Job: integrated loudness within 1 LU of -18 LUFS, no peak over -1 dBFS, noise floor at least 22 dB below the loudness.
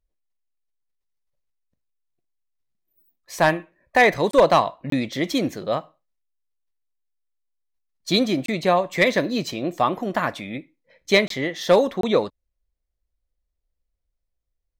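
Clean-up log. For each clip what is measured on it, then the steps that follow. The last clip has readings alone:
dropouts 5; longest dropout 23 ms; loudness -21.5 LUFS; peak level -7.0 dBFS; loudness target -18.0 LUFS
-> interpolate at 4.31/4.90/8.46/11.28/12.01 s, 23 ms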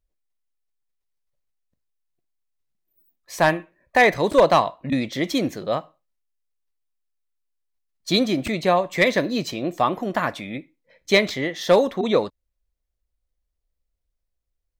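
dropouts 0; loudness -21.0 LUFS; peak level -7.0 dBFS; loudness target -18.0 LUFS
-> trim +3 dB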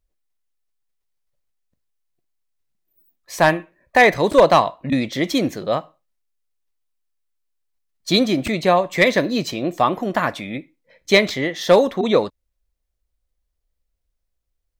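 loudness -18.0 LUFS; peak level -4.0 dBFS; noise floor -76 dBFS

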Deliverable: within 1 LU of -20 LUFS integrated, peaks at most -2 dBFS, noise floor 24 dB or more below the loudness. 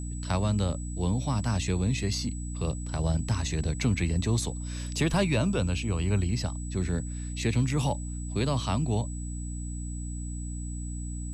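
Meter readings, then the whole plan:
hum 60 Hz; highest harmonic 300 Hz; hum level -32 dBFS; steady tone 7.9 kHz; tone level -44 dBFS; loudness -29.5 LUFS; peak level -15.0 dBFS; loudness target -20.0 LUFS
-> de-hum 60 Hz, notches 5; band-stop 7.9 kHz, Q 30; trim +9.5 dB

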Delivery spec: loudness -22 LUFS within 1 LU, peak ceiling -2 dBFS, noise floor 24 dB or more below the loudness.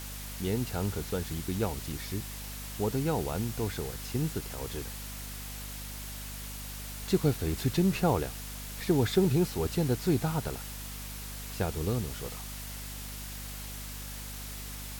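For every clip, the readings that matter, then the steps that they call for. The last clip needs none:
hum 50 Hz; highest harmonic 250 Hz; hum level -41 dBFS; noise floor -41 dBFS; noise floor target -57 dBFS; loudness -33.0 LUFS; peak level -12.5 dBFS; loudness target -22.0 LUFS
-> hum notches 50/100/150/200/250 Hz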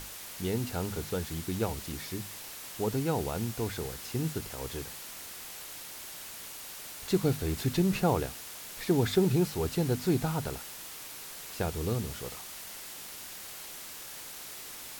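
hum not found; noise floor -44 dBFS; noise floor target -58 dBFS
-> noise reduction 14 dB, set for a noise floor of -44 dBFS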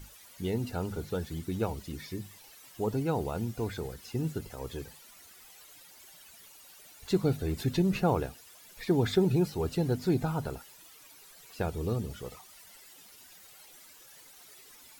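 noise floor -54 dBFS; noise floor target -56 dBFS
-> noise reduction 6 dB, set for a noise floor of -54 dBFS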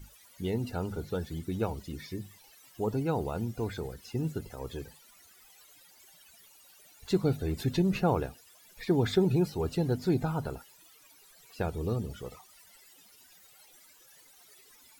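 noise floor -59 dBFS; loudness -32.0 LUFS; peak level -13.5 dBFS; loudness target -22.0 LUFS
-> trim +10 dB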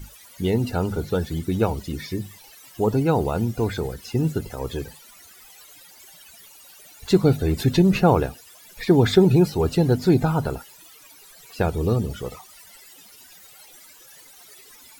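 loudness -22.0 LUFS; peak level -3.5 dBFS; noise floor -49 dBFS

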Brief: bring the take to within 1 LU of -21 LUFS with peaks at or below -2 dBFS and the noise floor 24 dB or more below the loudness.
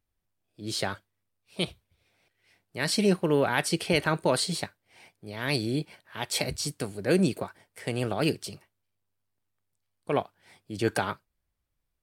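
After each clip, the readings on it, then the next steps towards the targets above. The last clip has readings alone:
loudness -28.5 LUFS; peak level -8.5 dBFS; loudness target -21.0 LUFS
-> trim +7.5 dB; peak limiter -2 dBFS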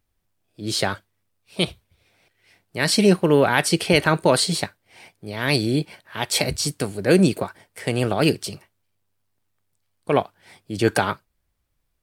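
loudness -21.0 LUFS; peak level -2.0 dBFS; noise floor -73 dBFS

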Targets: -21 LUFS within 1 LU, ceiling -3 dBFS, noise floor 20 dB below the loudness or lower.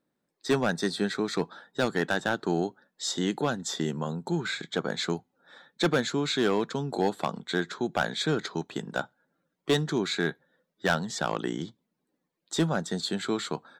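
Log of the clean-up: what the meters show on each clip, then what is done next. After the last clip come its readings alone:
clipped samples 0.4%; clipping level -17.0 dBFS; loudness -29.5 LUFS; peak level -17.0 dBFS; loudness target -21.0 LUFS
-> clip repair -17 dBFS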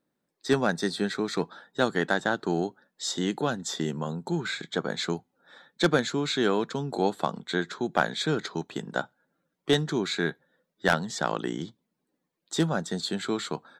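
clipped samples 0.0%; loudness -29.0 LUFS; peak level -8.0 dBFS; loudness target -21.0 LUFS
-> trim +8 dB; peak limiter -3 dBFS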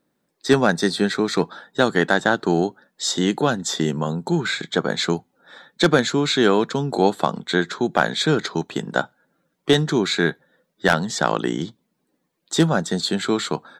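loudness -21.0 LUFS; peak level -3.0 dBFS; noise floor -73 dBFS

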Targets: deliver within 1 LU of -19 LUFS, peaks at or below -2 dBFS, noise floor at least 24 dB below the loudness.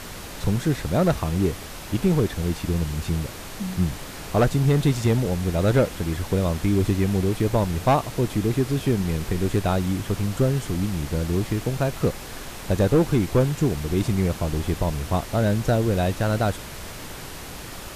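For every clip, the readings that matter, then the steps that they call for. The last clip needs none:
clipped samples 0.8%; clipping level -12.0 dBFS; noise floor -37 dBFS; noise floor target -48 dBFS; loudness -23.5 LUFS; peak level -12.0 dBFS; loudness target -19.0 LUFS
-> clip repair -12 dBFS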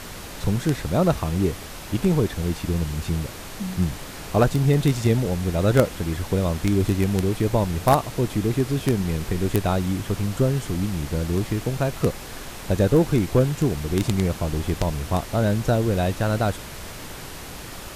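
clipped samples 0.0%; noise floor -37 dBFS; noise floor target -47 dBFS
-> noise print and reduce 10 dB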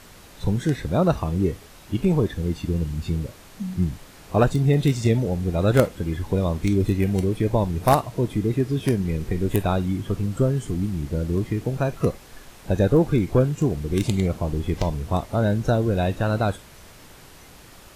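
noise floor -47 dBFS; noise floor target -48 dBFS
-> noise print and reduce 6 dB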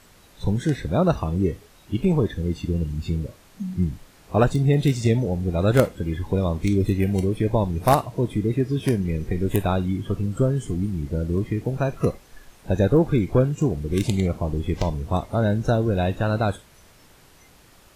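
noise floor -53 dBFS; loudness -23.5 LUFS; peak level -3.0 dBFS; loudness target -19.0 LUFS
-> trim +4.5 dB; peak limiter -2 dBFS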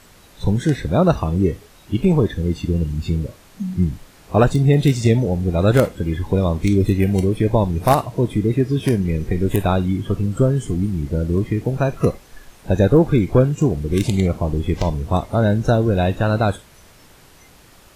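loudness -19.0 LUFS; peak level -2.0 dBFS; noise floor -48 dBFS

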